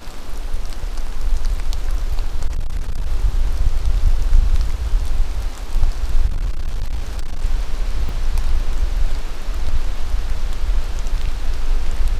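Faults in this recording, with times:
0:02.46–0:03.06: clipping −16 dBFS
0:06.28–0:07.44: clipping −16 dBFS
0:08.09: drop-out 3 ms

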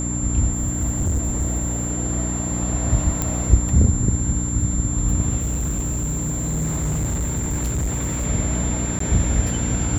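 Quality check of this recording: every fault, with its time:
mains hum 60 Hz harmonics 5 −25 dBFS
whistle 7,300 Hz −27 dBFS
0:00.51–0:01.92: clipping −17 dBFS
0:03.22: click −7 dBFS
0:05.40–0:08.27: clipping −19.5 dBFS
0:08.99–0:09.00: drop-out 14 ms

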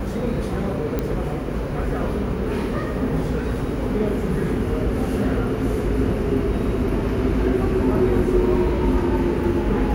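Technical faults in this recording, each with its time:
0:00.99: click −11 dBFS

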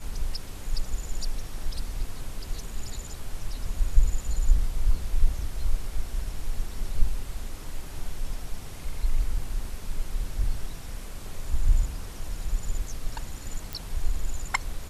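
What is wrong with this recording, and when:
0:13.73: click

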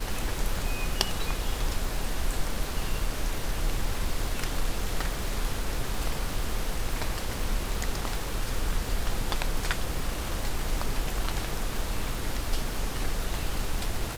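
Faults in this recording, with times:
surface crackle 330 per second −33 dBFS

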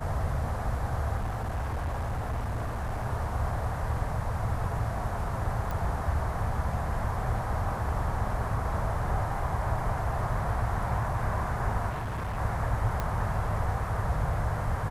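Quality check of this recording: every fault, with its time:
0:01.16–0:03.06: clipping −27.5 dBFS
0:05.71: click
0:11.89–0:12.38: clipping −29.5 dBFS
0:13.00: click −17 dBFS

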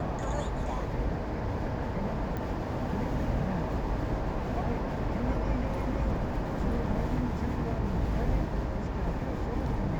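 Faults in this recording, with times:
0:02.37: click −23 dBFS

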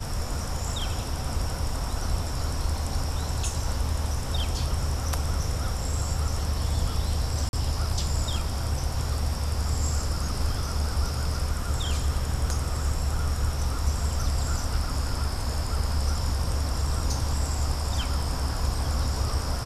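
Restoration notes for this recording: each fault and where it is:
0:07.49–0:07.53: drop-out 41 ms

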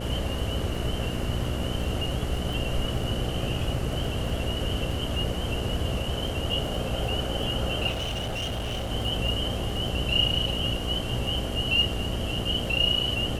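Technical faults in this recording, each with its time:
mains buzz 60 Hz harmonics 11 −33 dBFS
surface crackle 15 per second −33 dBFS
0:02.53: drop-out 3.7 ms
0:07.90–0:08.92: clipping −27 dBFS

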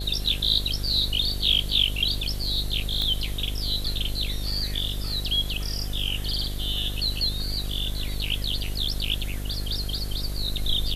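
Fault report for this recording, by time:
mains buzz 50 Hz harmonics 15 −31 dBFS
0:03.02: click −14 dBFS

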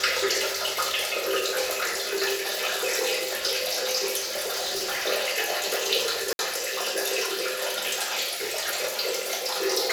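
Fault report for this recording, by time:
0:04.20–0:05.07: clipping −25 dBFS
0:06.33–0:06.39: drop-out 61 ms

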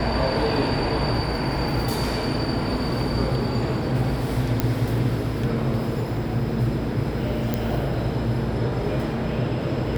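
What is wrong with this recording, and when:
0:04.60: click −7 dBFS
0:07.54: click −10 dBFS

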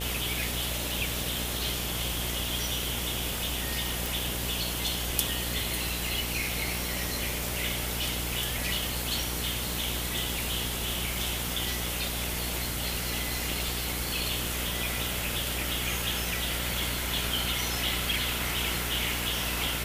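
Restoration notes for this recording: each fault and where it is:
mains buzz 60 Hz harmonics 15 −36 dBFS
0:04.06: click

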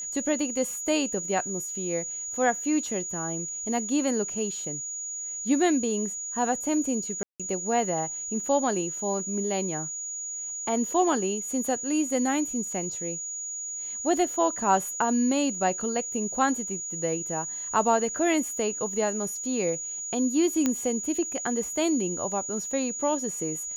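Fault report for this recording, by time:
whistle 6,800 Hz −32 dBFS
0:07.23–0:07.40: drop-out 166 ms
0:20.66: click −11 dBFS

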